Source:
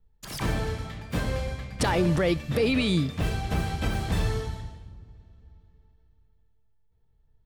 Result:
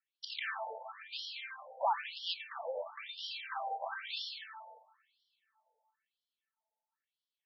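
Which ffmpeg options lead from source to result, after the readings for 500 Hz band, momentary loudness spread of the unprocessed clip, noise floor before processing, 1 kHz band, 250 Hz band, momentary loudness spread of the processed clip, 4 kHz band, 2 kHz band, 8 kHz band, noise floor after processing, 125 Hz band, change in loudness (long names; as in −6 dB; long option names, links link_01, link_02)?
−14.0 dB, 13 LU, −64 dBFS, −3.0 dB, below −40 dB, 11 LU, −5.0 dB, −8.5 dB, below −20 dB, below −85 dBFS, below −40 dB, −12.0 dB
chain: -filter_complex "[0:a]highshelf=frequency=9400:gain=10.5,acrossover=split=200|830|2100[link_01][link_02][link_03][link_04];[link_03]asoftclip=type=tanh:threshold=-30dB[link_05];[link_01][link_02][link_05][link_04]amix=inputs=4:normalize=0,afftfilt=real='re*between(b*sr/1024,650*pow(4100/650,0.5+0.5*sin(2*PI*1*pts/sr))/1.41,650*pow(4100/650,0.5+0.5*sin(2*PI*1*pts/sr))*1.41)':imag='im*between(b*sr/1024,650*pow(4100/650,0.5+0.5*sin(2*PI*1*pts/sr))/1.41,650*pow(4100/650,0.5+0.5*sin(2*PI*1*pts/sr))*1.41)':win_size=1024:overlap=0.75,volume=1dB"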